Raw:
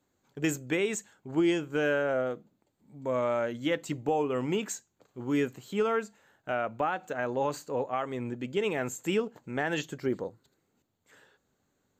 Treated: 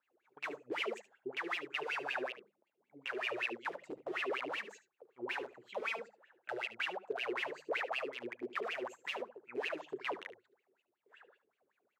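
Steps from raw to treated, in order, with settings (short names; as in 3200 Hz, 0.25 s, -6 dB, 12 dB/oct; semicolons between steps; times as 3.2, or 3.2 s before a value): wrapped overs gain 26 dB; compressor 3:1, threshold -35 dBFS, peak gain reduction 5 dB; wah 5.3 Hz 360–2800 Hz, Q 13; notches 50/100/150/200 Hz; echo 73 ms -15 dB; gain +12 dB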